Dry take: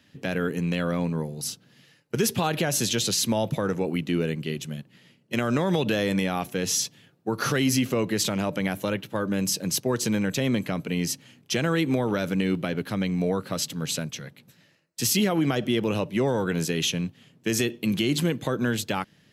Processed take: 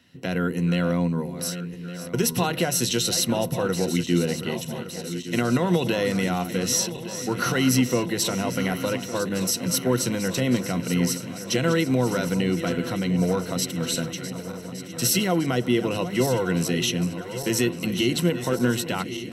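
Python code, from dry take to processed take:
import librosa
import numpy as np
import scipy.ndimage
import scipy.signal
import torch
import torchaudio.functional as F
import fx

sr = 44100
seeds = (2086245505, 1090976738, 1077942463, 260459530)

y = fx.reverse_delay_fb(x, sr, ms=581, feedback_pct=78, wet_db=-12.0)
y = fx.ripple_eq(y, sr, per_octave=2.0, db=9)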